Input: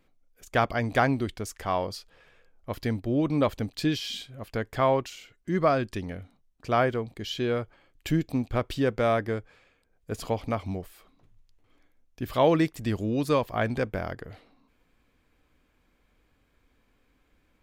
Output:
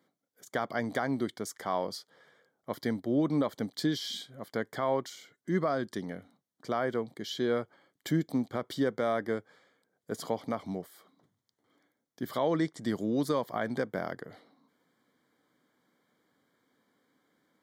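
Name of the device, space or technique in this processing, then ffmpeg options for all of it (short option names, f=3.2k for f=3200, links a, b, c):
PA system with an anti-feedback notch: -filter_complex "[0:a]asettb=1/sr,asplit=3[a][b][c];[a]atrim=end=12.384[d];[b]atrim=start=12.38:end=12.82,asetpts=PTS-STARTPTS,afade=t=in:d=0.004:c=qsin,afade=t=out:st=0.436:d=0.004:c=qsin,lowpass=f=8.9k:w=0.5412,lowpass=f=8.9k:w=1.3066[e];[c]atrim=start=12.816[f];[d][e]acrossfade=d=0.004:c1=hsin:c2=qsin[g];[g][f]acrossfade=d=0.004:c1=qsin:c2=hsin,highpass=f=150:w=0.5412,highpass=f=150:w=1.3066,asuperstop=centerf=2600:order=4:qfactor=3,alimiter=limit=-17dB:level=0:latency=1:release=149,volume=-1.5dB"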